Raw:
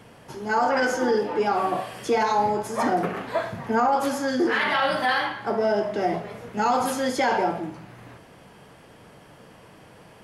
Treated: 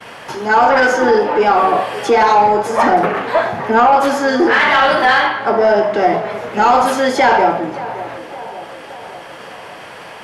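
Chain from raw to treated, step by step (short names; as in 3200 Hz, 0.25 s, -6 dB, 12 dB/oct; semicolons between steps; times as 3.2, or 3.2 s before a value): expander -47 dBFS; overdrive pedal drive 12 dB, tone 2200 Hz, clips at -10 dBFS; on a send: narrowing echo 0.569 s, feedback 59%, band-pass 530 Hz, level -14 dB; on the sum: mismatched tape noise reduction encoder only; gain +8.5 dB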